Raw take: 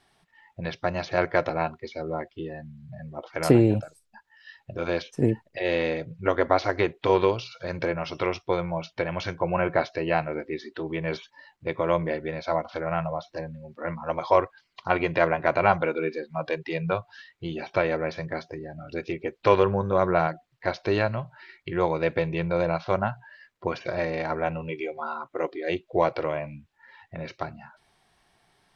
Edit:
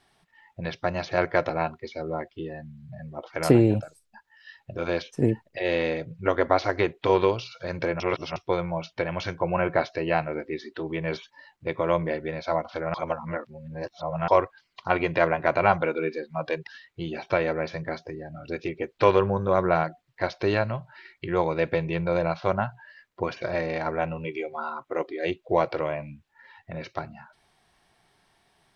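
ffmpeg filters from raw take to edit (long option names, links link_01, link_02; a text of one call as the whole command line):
ffmpeg -i in.wav -filter_complex "[0:a]asplit=6[link_01][link_02][link_03][link_04][link_05][link_06];[link_01]atrim=end=8.002[link_07];[link_02]atrim=start=7.998:end=8.362,asetpts=PTS-STARTPTS,areverse[link_08];[link_03]atrim=start=8.358:end=12.942[link_09];[link_04]atrim=start=12.938:end=14.282,asetpts=PTS-STARTPTS,areverse[link_10];[link_05]atrim=start=14.278:end=16.672[link_11];[link_06]atrim=start=17.108[link_12];[link_07][link_08]acrossfade=duration=0.004:curve1=hsin:curve2=hsin[link_13];[link_13][link_09]acrossfade=duration=0.004:curve1=hsin:curve2=hsin[link_14];[link_14][link_10]acrossfade=duration=0.004:curve1=hsin:curve2=hsin[link_15];[link_15][link_11]acrossfade=duration=0.004:curve1=hsin:curve2=hsin[link_16];[link_16][link_12]acrossfade=duration=0.004:curve1=hsin:curve2=hsin" out.wav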